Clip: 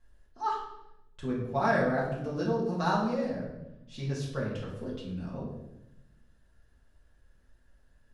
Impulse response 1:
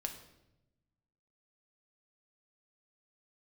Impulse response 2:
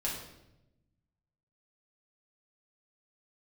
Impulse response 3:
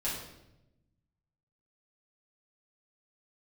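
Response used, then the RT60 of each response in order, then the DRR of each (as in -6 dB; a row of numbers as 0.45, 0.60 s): 2; 0.90, 0.90, 0.90 s; 4.0, -5.5, -9.5 dB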